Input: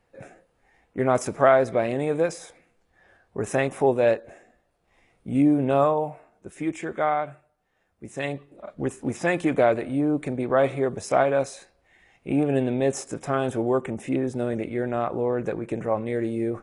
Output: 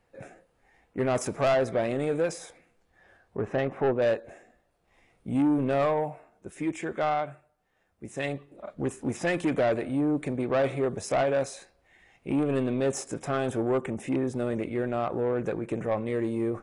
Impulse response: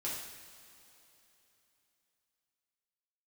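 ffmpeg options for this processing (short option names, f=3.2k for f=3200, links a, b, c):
-filter_complex "[0:a]asettb=1/sr,asplit=3[a][b][c];[a]atrim=end=3.374[d];[b]atrim=start=3.37:end=4.02,asetpts=PTS-STARTPTS,afade=t=in:d=0.004:c=qsin,afade=t=out:st=0.646:d=0.004:c=qsin,lowpass=1.8k[e];[c]atrim=start=4.016[f];[d][e]acrossfade=d=0.004:c1=hsin:c2=qsin[g];[g][f]acrossfade=d=0.004:c1=qsin:c2=hsin,asoftclip=type=tanh:threshold=-18dB,volume=-1dB"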